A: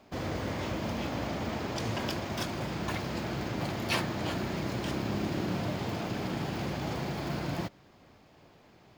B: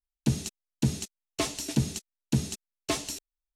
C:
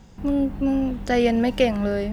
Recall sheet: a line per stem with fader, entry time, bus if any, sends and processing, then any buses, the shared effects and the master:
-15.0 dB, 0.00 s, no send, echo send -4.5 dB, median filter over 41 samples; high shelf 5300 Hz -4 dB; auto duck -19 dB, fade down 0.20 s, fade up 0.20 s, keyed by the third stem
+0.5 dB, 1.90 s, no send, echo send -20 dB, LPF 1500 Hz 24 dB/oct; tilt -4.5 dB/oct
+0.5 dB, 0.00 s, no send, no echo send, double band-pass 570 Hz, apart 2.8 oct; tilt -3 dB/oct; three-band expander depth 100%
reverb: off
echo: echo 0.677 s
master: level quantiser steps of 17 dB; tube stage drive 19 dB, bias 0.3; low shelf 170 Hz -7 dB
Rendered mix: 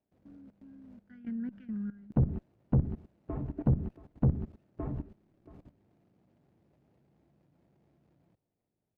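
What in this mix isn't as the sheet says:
stem A -15.0 dB -> -22.5 dB; stem C +0.5 dB -> -11.0 dB; master: missing low shelf 170 Hz -7 dB

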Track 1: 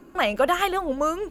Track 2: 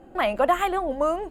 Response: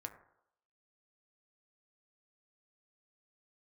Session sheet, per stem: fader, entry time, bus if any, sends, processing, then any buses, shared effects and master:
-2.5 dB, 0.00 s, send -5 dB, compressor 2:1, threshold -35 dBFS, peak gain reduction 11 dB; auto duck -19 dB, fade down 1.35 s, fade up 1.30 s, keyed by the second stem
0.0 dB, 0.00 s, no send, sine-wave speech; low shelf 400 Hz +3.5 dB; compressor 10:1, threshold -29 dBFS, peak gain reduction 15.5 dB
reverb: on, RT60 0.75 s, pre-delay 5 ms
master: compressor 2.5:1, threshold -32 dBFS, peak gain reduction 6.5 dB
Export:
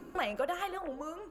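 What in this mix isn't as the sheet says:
stem 2 0.0 dB -> -11.5 dB; master: missing compressor 2.5:1, threshold -32 dBFS, peak gain reduction 6.5 dB

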